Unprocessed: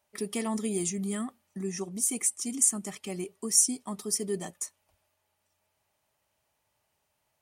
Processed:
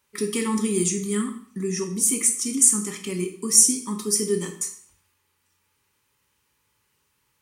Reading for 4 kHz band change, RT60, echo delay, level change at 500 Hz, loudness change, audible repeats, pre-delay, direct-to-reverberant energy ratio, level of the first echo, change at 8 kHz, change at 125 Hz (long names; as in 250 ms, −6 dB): +7.5 dB, 0.55 s, no echo audible, +8.0 dB, +7.5 dB, no echo audible, 5 ms, 4.0 dB, no echo audible, +8.0 dB, +7.5 dB